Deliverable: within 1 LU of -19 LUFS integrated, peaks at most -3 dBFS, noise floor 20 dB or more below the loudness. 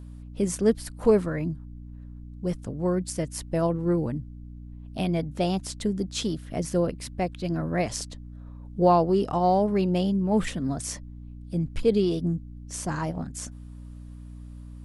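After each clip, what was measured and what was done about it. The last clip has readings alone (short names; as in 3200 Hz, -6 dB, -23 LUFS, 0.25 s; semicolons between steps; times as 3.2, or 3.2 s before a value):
hum 60 Hz; harmonics up to 300 Hz; hum level -39 dBFS; loudness -26.5 LUFS; peak -8.5 dBFS; loudness target -19.0 LUFS
-> notches 60/120/180/240/300 Hz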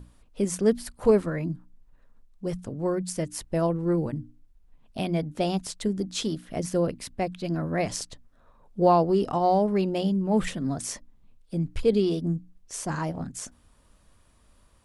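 hum none; loudness -27.0 LUFS; peak -8.5 dBFS; loudness target -19.0 LUFS
-> gain +8 dB; limiter -3 dBFS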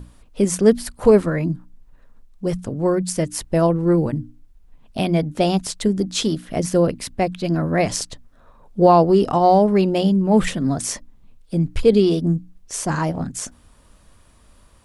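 loudness -19.5 LUFS; peak -3.0 dBFS; noise floor -52 dBFS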